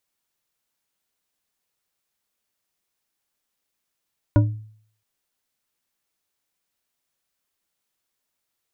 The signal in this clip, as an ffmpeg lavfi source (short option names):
-f lavfi -i "aevalsrc='0.316*pow(10,-3*t/0.57)*sin(2*PI*108*t)+0.178*pow(10,-3*t/0.28)*sin(2*PI*297.8*t)+0.1*pow(10,-3*t/0.175)*sin(2*PI*583.6*t)+0.0562*pow(10,-3*t/0.123)*sin(2*PI*964.8*t)+0.0316*pow(10,-3*t/0.093)*sin(2*PI*1440.7*t)':d=0.67:s=44100"